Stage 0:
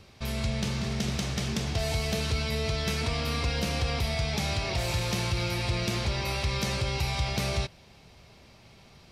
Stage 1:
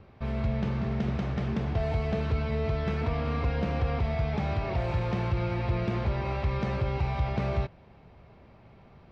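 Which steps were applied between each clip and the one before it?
low-pass 1.5 kHz 12 dB/octave; trim +1.5 dB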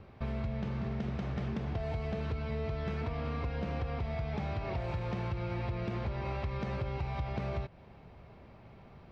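compression, threshold -32 dBFS, peak gain reduction 9.5 dB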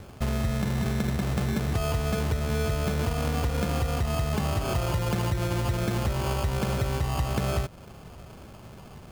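sample-and-hold 23×; trim +8.5 dB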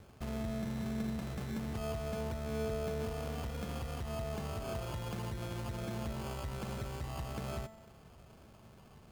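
one-sided clip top -26 dBFS; feedback comb 220 Hz, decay 1 s, mix 70%; trim -2 dB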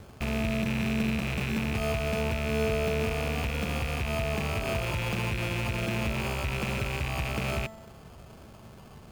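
rattle on loud lows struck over -47 dBFS, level -31 dBFS; trim +8.5 dB

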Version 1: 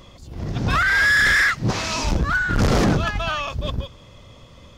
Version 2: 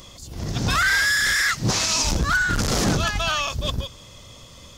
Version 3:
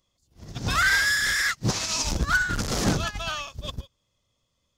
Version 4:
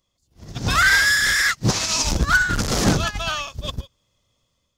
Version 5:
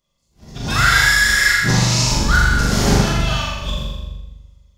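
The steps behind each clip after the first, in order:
FFT filter 490 Hz 0 dB, 2.4 kHz +3 dB, 6.8 kHz +14 dB; peak limiter -11 dBFS, peak gain reduction 8.5 dB; trim -1 dB
upward expansion 2.5:1, over -38 dBFS
level rider gain up to 5.5 dB
on a send: flutter echo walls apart 7.1 m, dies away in 0.94 s; on the sum: simulated room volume 270 m³, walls mixed, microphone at 1.3 m; trim -3.5 dB

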